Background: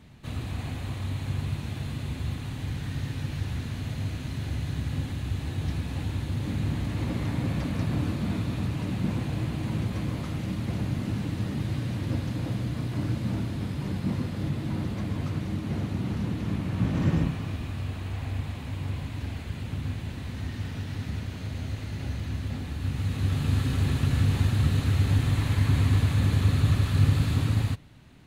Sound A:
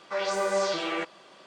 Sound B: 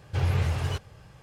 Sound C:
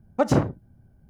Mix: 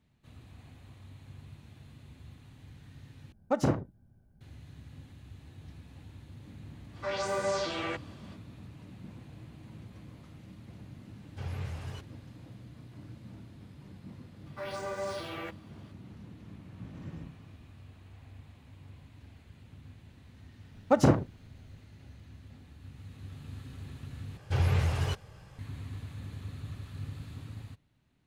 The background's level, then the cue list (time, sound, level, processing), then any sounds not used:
background -19 dB
3.32 replace with C -7 dB
6.92 add A -4.5 dB, fades 0.05 s
11.23 add B -12.5 dB
14.46 add A -9.5 dB + decimation joined by straight lines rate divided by 3×
20.72 add C -2 dB
24.37 replace with B -1.5 dB

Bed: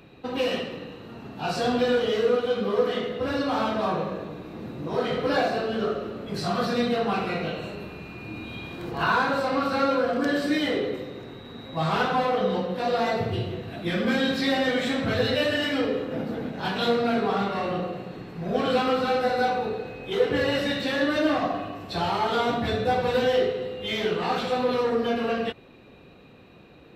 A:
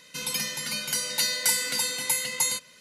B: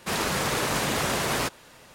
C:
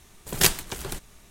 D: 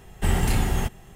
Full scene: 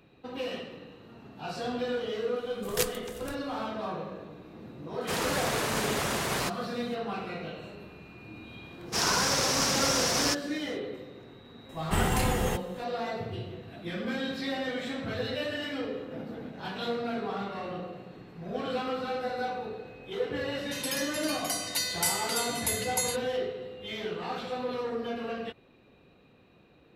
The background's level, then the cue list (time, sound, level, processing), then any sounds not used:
bed -9 dB
2.36 add C -11 dB
5.01 add B -4 dB
8.86 add B -4.5 dB, fades 0.10 s + bell 5500 Hz +15 dB 0.62 oct
11.69 add D -1.5 dB + low shelf 95 Hz -9.5 dB
20.57 add A -5 dB

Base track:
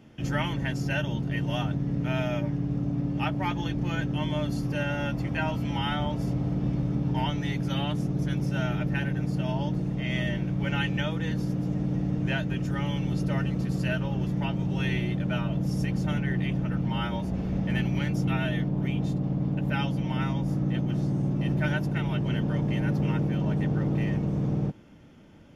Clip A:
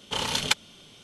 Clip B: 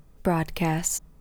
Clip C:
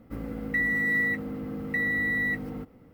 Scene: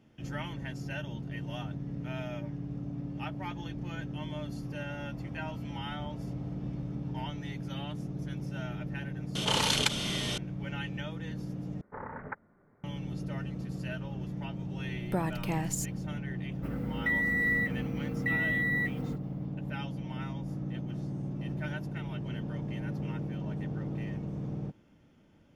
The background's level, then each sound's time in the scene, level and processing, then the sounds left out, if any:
base track -9.5 dB
9.35 add A -5.5 dB + fast leveller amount 70%
11.81 replace with A -8.5 dB + steep low-pass 1900 Hz 72 dB/oct
14.87 add B -8 dB
16.52 add C -3 dB

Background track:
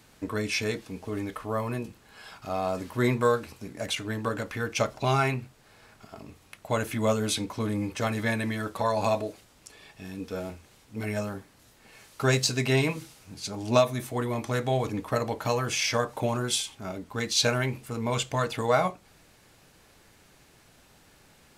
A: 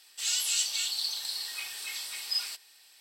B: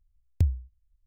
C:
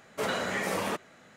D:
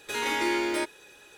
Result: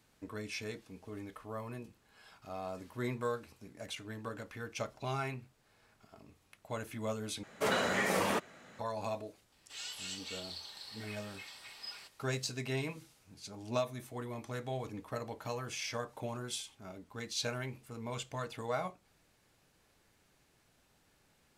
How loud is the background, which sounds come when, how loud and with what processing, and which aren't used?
background track -12.5 dB
7.43 replace with C -0.5 dB
9.52 add A -2 dB + LPF 1100 Hz 6 dB/oct
not used: B, D

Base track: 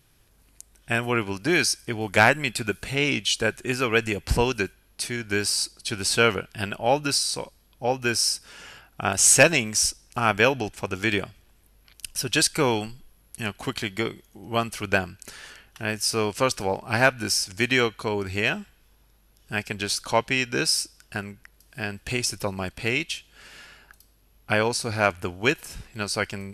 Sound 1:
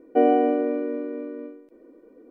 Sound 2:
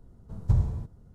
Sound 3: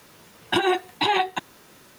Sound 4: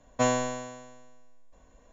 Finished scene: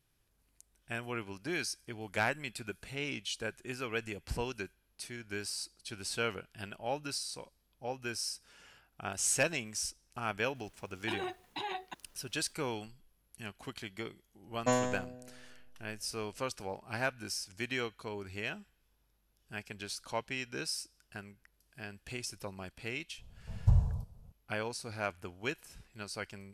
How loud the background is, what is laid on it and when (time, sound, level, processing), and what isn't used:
base track -14.5 dB
10.55 add 3 -17.5 dB
14.47 add 4 -4 dB + Wiener smoothing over 41 samples
23.18 add 2 -1.5 dB + fixed phaser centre 770 Hz, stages 4
not used: 1

